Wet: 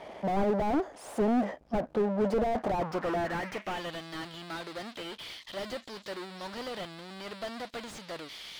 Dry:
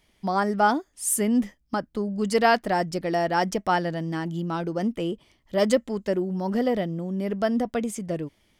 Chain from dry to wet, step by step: power-law waveshaper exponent 0.5; band-pass sweep 650 Hz -> 4 kHz, 2.51–4.05 s; slew-rate limiter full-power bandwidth 16 Hz; trim +4.5 dB

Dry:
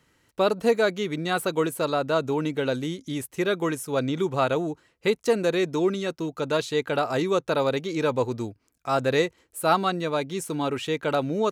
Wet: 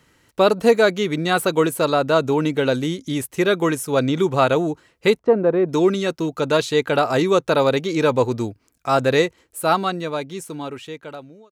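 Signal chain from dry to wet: fade out at the end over 2.70 s; 5.19–5.69 s: Chebyshev low-pass 950 Hz, order 2; trim +6.5 dB

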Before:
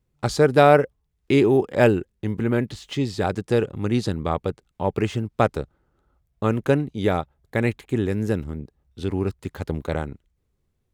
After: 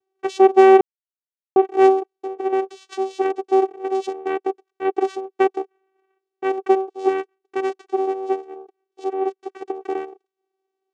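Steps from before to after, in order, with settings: vocoder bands 4, saw 383 Hz; 0.81–1.56 s: mute; 7.06–7.70 s: peaking EQ 600 Hz -12.5 dB 0.34 oct; trim +3.5 dB

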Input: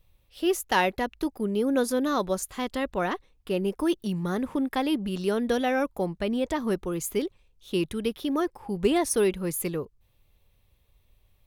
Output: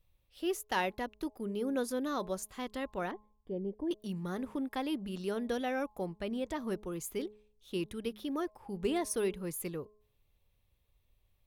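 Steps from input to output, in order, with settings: 3.11–3.91 s: boxcar filter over 33 samples; de-hum 211.2 Hz, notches 5; trim -9 dB

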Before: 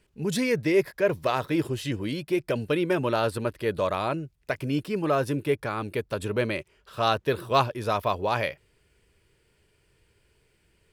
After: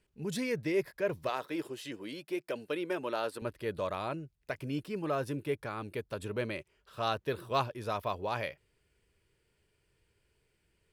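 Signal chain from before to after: 1.29–3.42 s: high-pass 290 Hz 12 dB/octave; trim -8.5 dB

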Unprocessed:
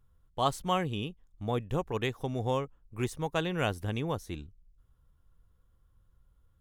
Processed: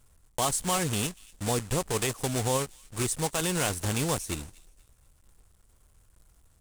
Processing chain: block-companded coder 3-bit; peaking EQ 8.5 kHz +13.5 dB 0.95 oct; peak limiter -19 dBFS, peak gain reduction 8 dB; feedback echo behind a high-pass 239 ms, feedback 31%, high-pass 2.2 kHz, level -21.5 dB; trim +3.5 dB

